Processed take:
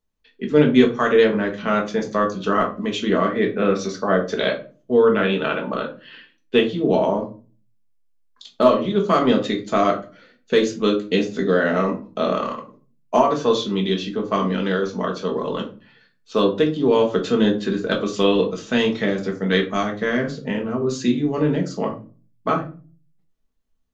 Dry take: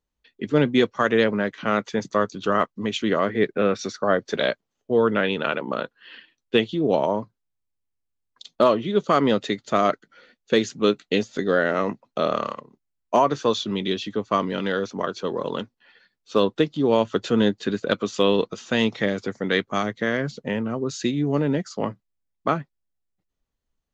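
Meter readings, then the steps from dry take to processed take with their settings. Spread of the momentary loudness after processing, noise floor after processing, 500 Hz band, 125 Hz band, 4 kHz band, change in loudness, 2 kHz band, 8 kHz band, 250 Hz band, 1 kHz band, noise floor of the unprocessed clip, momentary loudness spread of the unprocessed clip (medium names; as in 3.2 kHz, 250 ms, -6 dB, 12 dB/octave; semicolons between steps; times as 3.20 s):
9 LU, -62 dBFS, +3.0 dB, +3.0 dB, +1.5 dB, +3.0 dB, +1.5 dB, no reading, +3.5 dB, +2.0 dB, -80 dBFS, 8 LU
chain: simulated room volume 210 m³, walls furnished, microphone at 1.5 m; trim -1 dB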